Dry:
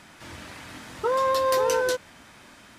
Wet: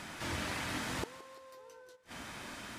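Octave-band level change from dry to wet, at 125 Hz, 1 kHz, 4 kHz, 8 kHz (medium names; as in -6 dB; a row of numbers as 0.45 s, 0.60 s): +1.0 dB, -17.0 dB, -7.0 dB, -9.5 dB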